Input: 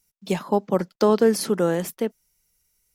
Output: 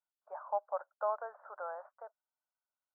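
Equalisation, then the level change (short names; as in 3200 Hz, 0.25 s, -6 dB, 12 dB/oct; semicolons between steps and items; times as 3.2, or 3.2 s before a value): Chebyshev band-pass 590–1500 Hz, order 4; air absorption 400 m; -7.0 dB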